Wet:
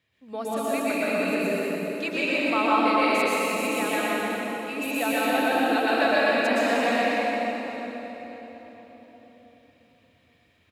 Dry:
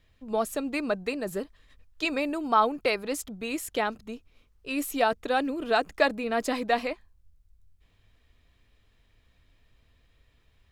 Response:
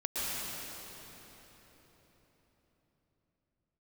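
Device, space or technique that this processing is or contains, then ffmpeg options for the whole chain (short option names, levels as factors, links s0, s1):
PA in a hall: -filter_complex "[0:a]highpass=f=100:w=0.5412,highpass=f=100:w=1.3066,equalizer=f=2300:t=o:w=0.77:g=5,aecho=1:1:124:0.596[s0];[1:a]atrim=start_sample=2205[s1];[s0][s1]afir=irnorm=-1:irlink=0,volume=0.596"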